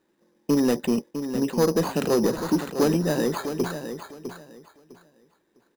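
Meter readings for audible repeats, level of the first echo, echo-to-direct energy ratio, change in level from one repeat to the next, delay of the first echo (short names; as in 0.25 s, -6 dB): 2, -9.5 dB, -9.5 dB, -13.0 dB, 0.654 s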